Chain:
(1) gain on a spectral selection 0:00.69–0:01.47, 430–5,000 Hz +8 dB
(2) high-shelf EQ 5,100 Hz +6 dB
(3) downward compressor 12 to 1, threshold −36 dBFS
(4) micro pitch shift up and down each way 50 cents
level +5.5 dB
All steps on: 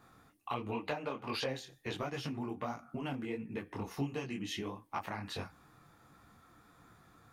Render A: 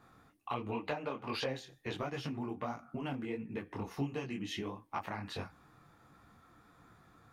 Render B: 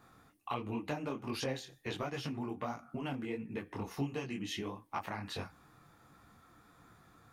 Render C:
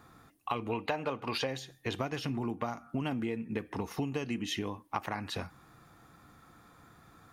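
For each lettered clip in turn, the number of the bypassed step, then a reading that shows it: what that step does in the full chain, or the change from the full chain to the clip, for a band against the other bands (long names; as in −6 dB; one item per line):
2, 8 kHz band −3.5 dB
1, 8 kHz band +2.0 dB
4, change in crest factor +3.5 dB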